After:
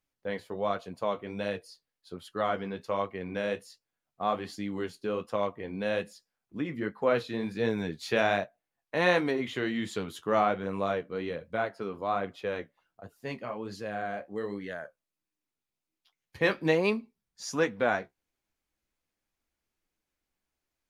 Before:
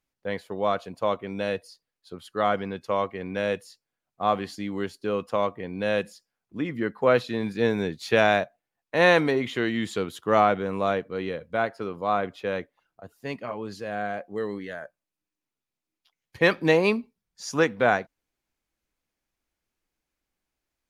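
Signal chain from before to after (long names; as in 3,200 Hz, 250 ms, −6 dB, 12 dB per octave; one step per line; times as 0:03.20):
flanger 1.3 Hz, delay 9.1 ms, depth 6.3 ms, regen −45%
in parallel at −2.5 dB: downward compressor, threshold −36 dBFS, peak gain reduction 18 dB
on the sum: level −3 dB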